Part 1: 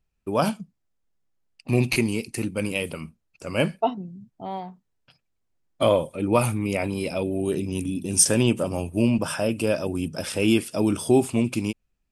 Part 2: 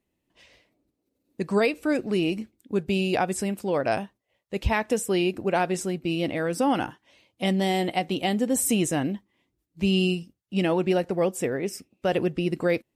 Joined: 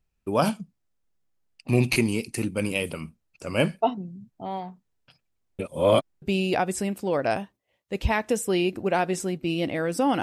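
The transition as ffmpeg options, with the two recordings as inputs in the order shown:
-filter_complex "[0:a]apad=whole_dur=10.22,atrim=end=10.22,asplit=2[a][b];[a]atrim=end=5.592[c];[b]atrim=start=5.588:end=6.222,asetpts=PTS-STARTPTS,areverse[d];[1:a]atrim=start=2.828:end=6.83[e];[c][d]acrossfade=d=0.004:c1=hsin:c2=hsin[f];[f][e]acrossfade=d=0.004:c1=hsin:c2=hsin"

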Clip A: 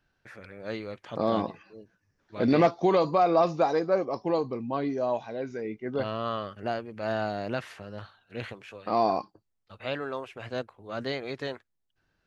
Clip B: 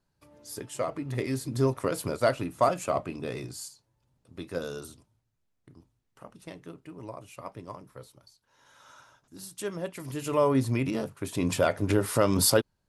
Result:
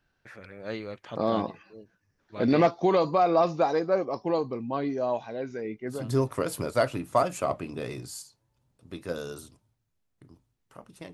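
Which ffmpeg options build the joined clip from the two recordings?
-filter_complex "[0:a]apad=whole_dur=11.13,atrim=end=11.13,atrim=end=6.1,asetpts=PTS-STARTPTS[a];[1:a]atrim=start=1.32:end=6.59,asetpts=PTS-STARTPTS[b];[a][b]acrossfade=d=0.24:c1=tri:c2=tri"

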